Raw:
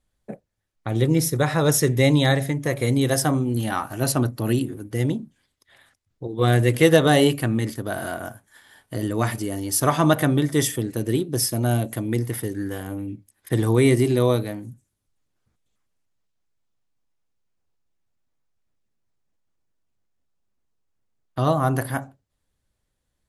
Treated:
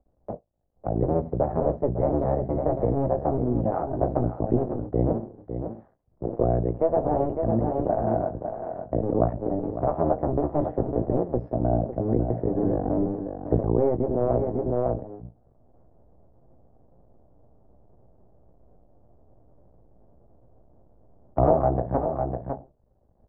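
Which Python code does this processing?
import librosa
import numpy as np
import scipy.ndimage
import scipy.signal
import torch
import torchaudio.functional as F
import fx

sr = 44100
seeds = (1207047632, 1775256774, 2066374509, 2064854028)

y = fx.cycle_switch(x, sr, every=2, mode='muted')
y = fx.doubler(y, sr, ms=17.0, db=-9.0)
y = y + 10.0 ** (-11.5 / 20.0) * np.pad(y, (int(553 * sr / 1000.0), 0))[:len(y)]
y = fx.rider(y, sr, range_db=10, speed_s=0.5)
y = fx.ladder_lowpass(y, sr, hz=780.0, resonance_pct=50)
y = fx.band_squash(y, sr, depth_pct=40)
y = F.gain(torch.from_numpy(y), 6.5).numpy()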